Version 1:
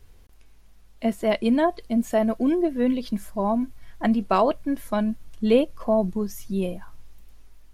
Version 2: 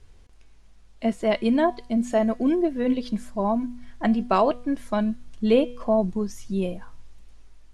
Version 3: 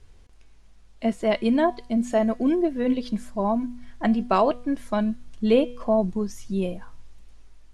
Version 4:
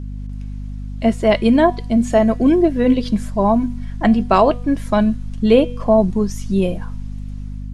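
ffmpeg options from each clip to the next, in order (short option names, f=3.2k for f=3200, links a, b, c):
-af "lowpass=f=9.2k:w=0.5412,lowpass=f=9.2k:w=1.3066,bandreject=f=244:t=h:w=4,bandreject=f=488:t=h:w=4,bandreject=f=732:t=h:w=4,bandreject=f=976:t=h:w=4,bandreject=f=1.22k:t=h:w=4,bandreject=f=1.464k:t=h:w=4,bandreject=f=1.708k:t=h:w=4,bandreject=f=1.952k:t=h:w=4,bandreject=f=2.196k:t=h:w=4,bandreject=f=2.44k:t=h:w=4,bandreject=f=2.684k:t=h:w=4,bandreject=f=2.928k:t=h:w=4,bandreject=f=3.172k:t=h:w=4,bandreject=f=3.416k:t=h:w=4,bandreject=f=3.66k:t=h:w=4,bandreject=f=3.904k:t=h:w=4,bandreject=f=4.148k:t=h:w=4,bandreject=f=4.392k:t=h:w=4,bandreject=f=4.636k:t=h:w=4,bandreject=f=4.88k:t=h:w=4,bandreject=f=5.124k:t=h:w=4,bandreject=f=5.368k:t=h:w=4,bandreject=f=5.612k:t=h:w=4,bandreject=f=5.856k:t=h:w=4,bandreject=f=6.1k:t=h:w=4,bandreject=f=6.344k:t=h:w=4,bandreject=f=6.588k:t=h:w=4,bandreject=f=6.832k:t=h:w=4,bandreject=f=7.076k:t=h:w=4,bandreject=f=7.32k:t=h:w=4,bandreject=f=7.564k:t=h:w=4,bandreject=f=7.808k:t=h:w=4,bandreject=f=8.052k:t=h:w=4,bandreject=f=8.296k:t=h:w=4"
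-af anull
-af "dynaudnorm=f=100:g=5:m=7dB,aeval=exprs='val(0)+0.0398*(sin(2*PI*50*n/s)+sin(2*PI*2*50*n/s)/2+sin(2*PI*3*50*n/s)/3+sin(2*PI*4*50*n/s)/4+sin(2*PI*5*50*n/s)/5)':c=same,volume=1.5dB"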